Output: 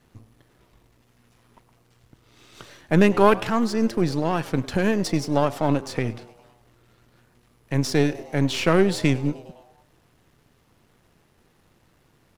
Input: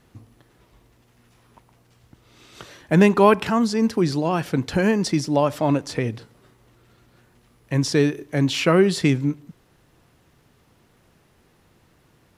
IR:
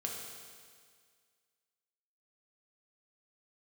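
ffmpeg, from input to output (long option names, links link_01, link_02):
-filter_complex "[0:a]aeval=exprs='if(lt(val(0),0),0.447*val(0),val(0))':channel_layout=same,asplit=6[link_01][link_02][link_03][link_04][link_05][link_06];[link_02]adelay=102,afreqshift=120,volume=-21dB[link_07];[link_03]adelay=204,afreqshift=240,volume=-25.4dB[link_08];[link_04]adelay=306,afreqshift=360,volume=-29.9dB[link_09];[link_05]adelay=408,afreqshift=480,volume=-34.3dB[link_10];[link_06]adelay=510,afreqshift=600,volume=-38.7dB[link_11];[link_01][link_07][link_08][link_09][link_10][link_11]amix=inputs=6:normalize=0"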